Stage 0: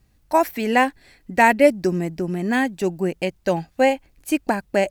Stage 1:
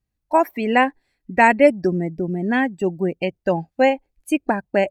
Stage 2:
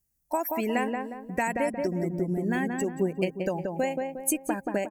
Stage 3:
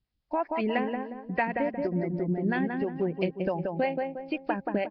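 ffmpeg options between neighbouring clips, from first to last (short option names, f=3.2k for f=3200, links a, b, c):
-af "afftdn=nr=20:nf=-32,volume=1dB"
-filter_complex "[0:a]acompressor=threshold=-22dB:ratio=6,aexciter=amount=3:drive=9.6:freq=5.6k,asplit=2[a][b];[b]adelay=179,lowpass=f=1.4k:p=1,volume=-3dB,asplit=2[c][d];[d]adelay=179,lowpass=f=1.4k:p=1,volume=0.45,asplit=2[e][f];[f]adelay=179,lowpass=f=1.4k:p=1,volume=0.45,asplit=2[g][h];[h]adelay=179,lowpass=f=1.4k:p=1,volume=0.45,asplit=2[i][j];[j]adelay=179,lowpass=f=1.4k:p=1,volume=0.45,asplit=2[k][l];[l]adelay=179,lowpass=f=1.4k:p=1,volume=0.45[m];[a][c][e][g][i][k][m]amix=inputs=7:normalize=0,volume=-3.5dB"
-filter_complex "[0:a]asplit=2[a][b];[b]volume=19dB,asoftclip=hard,volume=-19dB,volume=-6.5dB[c];[a][c]amix=inputs=2:normalize=0,acrossover=split=450[d][e];[d]aeval=exprs='val(0)*(1-0.7/2+0.7/2*cos(2*PI*6.1*n/s))':c=same[f];[e]aeval=exprs='val(0)*(1-0.7/2-0.7/2*cos(2*PI*6.1*n/s))':c=same[g];[f][g]amix=inputs=2:normalize=0" -ar 11025 -c:a nellymoser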